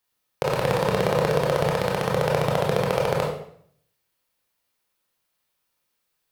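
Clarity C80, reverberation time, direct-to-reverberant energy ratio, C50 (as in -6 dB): 7.5 dB, 0.60 s, -2.0 dB, 4.0 dB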